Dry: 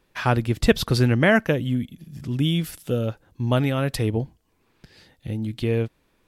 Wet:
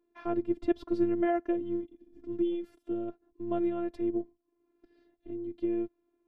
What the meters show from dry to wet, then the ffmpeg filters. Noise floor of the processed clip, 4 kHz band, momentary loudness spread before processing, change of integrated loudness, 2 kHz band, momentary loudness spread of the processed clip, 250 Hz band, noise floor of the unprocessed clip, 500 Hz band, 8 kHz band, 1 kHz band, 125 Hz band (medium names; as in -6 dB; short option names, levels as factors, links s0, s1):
-78 dBFS, under -25 dB, 14 LU, -9.5 dB, -22.0 dB, 13 LU, -6.0 dB, -67 dBFS, -7.5 dB, under -30 dB, -9.5 dB, -27.5 dB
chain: -af "bandpass=f=300:t=q:w=1.3:csg=0,afftfilt=real='hypot(re,im)*cos(PI*b)':imag='0':win_size=512:overlap=0.75"